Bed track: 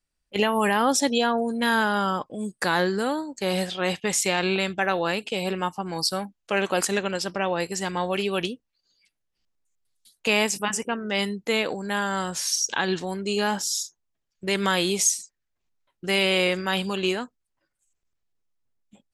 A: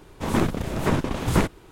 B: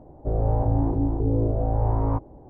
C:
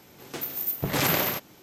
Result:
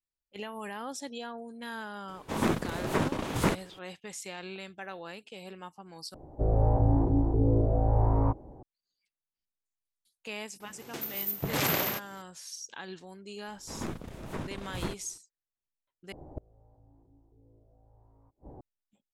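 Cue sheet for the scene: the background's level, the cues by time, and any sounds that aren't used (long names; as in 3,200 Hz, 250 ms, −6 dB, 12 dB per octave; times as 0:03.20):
bed track −17.5 dB
0:02.08: mix in A −4 dB + low-shelf EQ 91 Hz −11.5 dB
0:06.14: overwrite with B −2 dB
0:10.60: mix in C −4 dB
0:13.47: mix in A −15 dB
0:16.12: overwrite with B −1 dB + gate with flip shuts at −25 dBFS, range −38 dB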